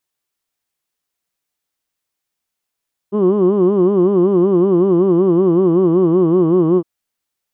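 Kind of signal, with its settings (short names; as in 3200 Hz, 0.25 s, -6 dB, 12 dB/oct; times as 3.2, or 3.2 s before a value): formant vowel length 3.71 s, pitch 196 Hz, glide -2.5 st, vibrato depth 1.45 st, F1 360 Hz, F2 1100 Hz, F3 3000 Hz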